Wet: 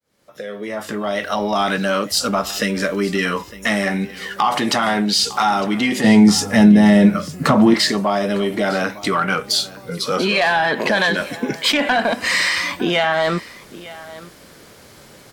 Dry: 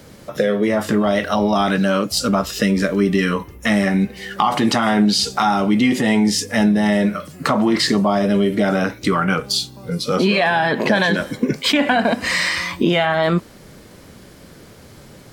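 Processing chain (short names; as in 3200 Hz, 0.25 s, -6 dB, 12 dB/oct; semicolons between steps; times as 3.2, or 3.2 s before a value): opening faded in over 1.71 s; low shelf 320 Hz -10.5 dB; echo 0.906 s -19 dB; sine folder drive 4 dB, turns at -3 dBFS; 6.04–7.74 bell 140 Hz +14.5 dB 2.4 oct; gain -5.5 dB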